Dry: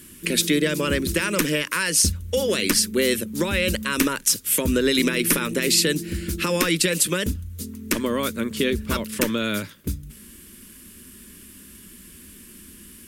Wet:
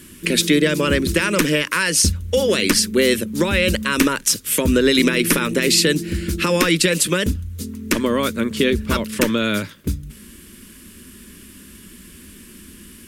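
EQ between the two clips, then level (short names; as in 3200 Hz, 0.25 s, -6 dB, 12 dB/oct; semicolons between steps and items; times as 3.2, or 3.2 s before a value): high shelf 9000 Hz -8 dB; +5.0 dB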